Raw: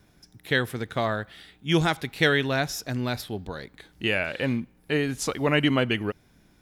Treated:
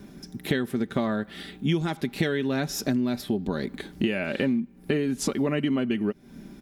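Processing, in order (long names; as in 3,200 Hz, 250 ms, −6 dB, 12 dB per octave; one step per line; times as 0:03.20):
parametric band 260 Hz +14 dB 1.3 octaves
comb filter 5.1 ms, depth 41%
downward compressor 10 to 1, threshold −29 dBFS, peak gain reduction 21.5 dB
level +6.5 dB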